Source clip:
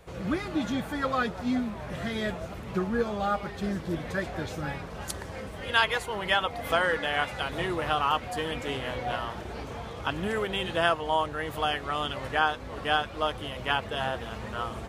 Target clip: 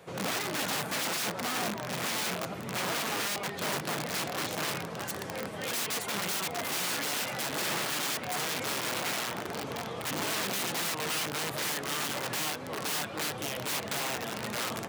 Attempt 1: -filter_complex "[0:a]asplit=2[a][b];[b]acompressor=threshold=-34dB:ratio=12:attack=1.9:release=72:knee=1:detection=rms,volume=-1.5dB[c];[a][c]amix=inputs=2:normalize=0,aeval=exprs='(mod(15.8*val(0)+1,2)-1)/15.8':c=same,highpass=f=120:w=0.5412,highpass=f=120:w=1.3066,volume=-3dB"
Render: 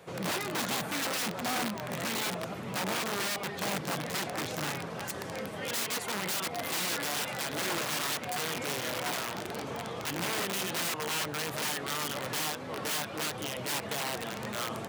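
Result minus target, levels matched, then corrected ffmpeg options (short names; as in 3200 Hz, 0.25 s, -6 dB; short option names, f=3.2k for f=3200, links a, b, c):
compressor: peak gain reduction +7.5 dB
-filter_complex "[0:a]asplit=2[a][b];[b]acompressor=threshold=-26dB:ratio=12:attack=1.9:release=72:knee=1:detection=rms,volume=-1.5dB[c];[a][c]amix=inputs=2:normalize=0,aeval=exprs='(mod(15.8*val(0)+1,2)-1)/15.8':c=same,highpass=f=120:w=0.5412,highpass=f=120:w=1.3066,volume=-3dB"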